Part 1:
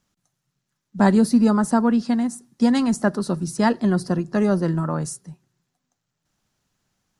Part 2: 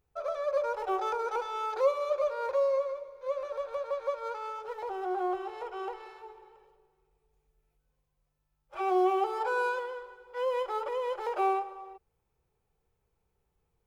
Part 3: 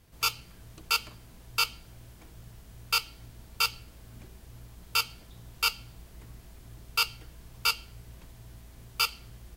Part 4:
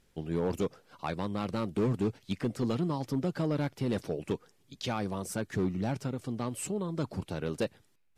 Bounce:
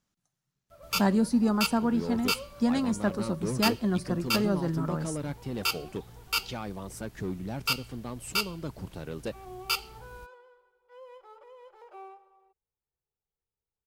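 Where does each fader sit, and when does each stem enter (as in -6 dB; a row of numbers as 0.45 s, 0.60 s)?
-8.0 dB, -18.5 dB, -2.0 dB, -4.0 dB; 0.00 s, 0.55 s, 0.70 s, 1.65 s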